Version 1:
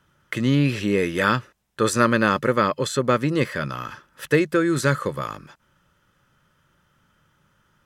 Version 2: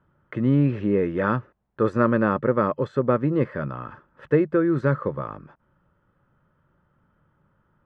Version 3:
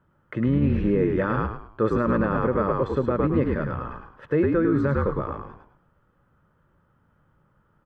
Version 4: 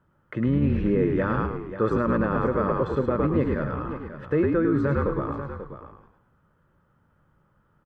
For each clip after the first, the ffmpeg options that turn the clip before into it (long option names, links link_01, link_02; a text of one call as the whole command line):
ffmpeg -i in.wav -af "lowpass=1100" out.wav
ffmpeg -i in.wav -filter_complex "[0:a]asplit=5[link_01][link_02][link_03][link_04][link_05];[link_02]adelay=105,afreqshift=-55,volume=-4dB[link_06];[link_03]adelay=210,afreqshift=-110,volume=-13.1dB[link_07];[link_04]adelay=315,afreqshift=-165,volume=-22.2dB[link_08];[link_05]adelay=420,afreqshift=-220,volume=-31.4dB[link_09];[link_01][link_06][link_07][link_08][link_09]amix=inputs=5:normalize=0,alimiter=limit=-12.5dB:level=0:latency=1:release=54" out.wav
ffmpeg -i in.wav -af "aecho=1:1:538:0.266,volume=-1dB" out.wav